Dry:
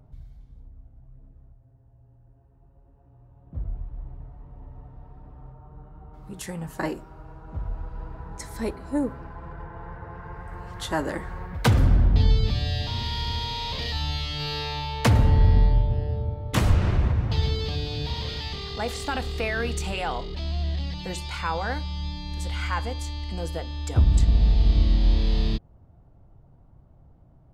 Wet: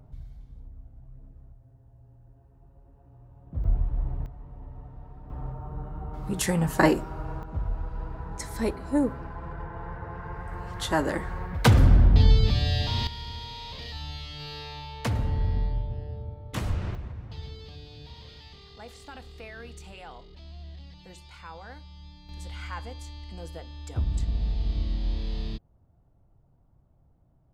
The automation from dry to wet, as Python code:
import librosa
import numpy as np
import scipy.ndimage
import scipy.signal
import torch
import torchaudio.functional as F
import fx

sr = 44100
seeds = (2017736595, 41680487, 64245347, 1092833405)

y = fx.gain(x, sr, db=fx.steps((0.0, 1.5), (3.64, 8.5), (4.26, 0.5), (5.3, 9.0), (7.43, 1.5), (13.07, -9.0), (16.95, -15.5), (22.29, -9.0)))